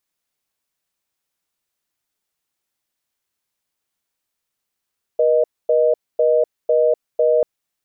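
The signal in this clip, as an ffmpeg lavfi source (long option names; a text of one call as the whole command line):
ffmpeg -f lavfi -i "aevalsrc='0.178*(sin(2*PI*480*t)+sin(2*PI*620*t))*clip(min(mod(t,0.5),0.25-mod(t,0.5))/0.005,0,1)':duration=2.24:sample_rate=44100" out.wav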